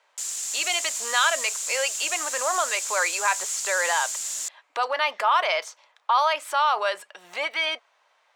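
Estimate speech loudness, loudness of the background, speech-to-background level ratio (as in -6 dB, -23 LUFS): -25.0 LUFS, -28.0 LUFS, 3.0 dB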